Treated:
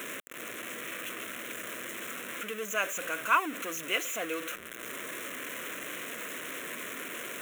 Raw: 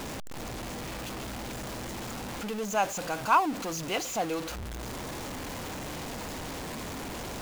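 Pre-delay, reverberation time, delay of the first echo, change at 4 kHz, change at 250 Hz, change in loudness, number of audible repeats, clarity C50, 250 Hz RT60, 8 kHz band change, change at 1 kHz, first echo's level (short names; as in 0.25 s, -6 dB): none, none, none, -0.5 dB, -7.0 dB, -1.5 dB, none, none, none, -0.5 dB, -5.0 dB, none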